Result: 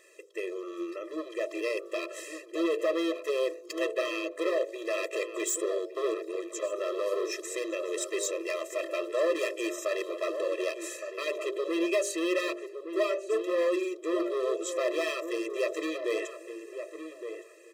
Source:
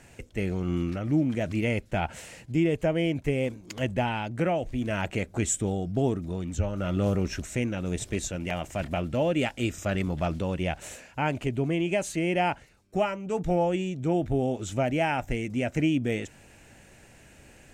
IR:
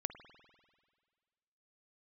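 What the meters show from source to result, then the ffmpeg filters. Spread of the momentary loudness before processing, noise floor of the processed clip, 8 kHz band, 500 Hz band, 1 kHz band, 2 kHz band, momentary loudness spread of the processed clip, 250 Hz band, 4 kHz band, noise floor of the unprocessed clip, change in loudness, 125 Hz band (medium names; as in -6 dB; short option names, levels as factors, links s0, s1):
6 LU, -48 dBFS, -0.5 dB, +1.0 dB, -7.5 dB, -2.0 dB, 9 LU, -7.0 dB, -0.5 dB, -54 dBFS, -3.0 dB, under -40 dB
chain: -filter_complex "[0:a]aeval=exprs='val(0)+0.00398*sin(2*PI*3500*n/s)':c=same,dynaudnorm=f=390:g=9:m=1.78,bandreject=f=50.34:t=h:w=4,bandreject=f=100.68:t=h:w=4,bandreject=f=151.02:t=h:w=4,bandreject=f=201.36:t=h:w=4,bandreject=f=251.7:t=h:w=4,bandreject=f=302.04:t=h:w=4,bandreject=f=352.38:t=h:w=4,bandreject=f=402.72:t=h:w=4,bandreject=f=453.06:t=h:w=4,bandreject=f=503.4:t=h:w=4,bandreject=f=553.74:t=h:w=4,bandreject=f=604.08:t=h:w=4,bandreject=f=654.42:t=h:w=4,bandreject=f=704.76:t=h:w=4,asoftclip=type=hard:threshold=0.0794,asplit=2[s0][s1];[s1]adelay=1165,lowpass=f=1500:p=1,volume=0.398,asplit=2[s2][s3];[s3]adelay=1165,lowpass=f=1500:p=1,volume=0.23,asplit=2[s4][s5];[s5]adelay=1165,lowpass=f=1500:p=1,volume=0.23[s6];[s0][s2][s4][s6]amix=inputs=4:normalize=0,afftfilt=real='re*eq(mod(floor(b*sr/1024/340),2),1)':imag='im*eq(mod(floor(b*sr/1024/340),2),1)':win_size=1024:overlap=0.75"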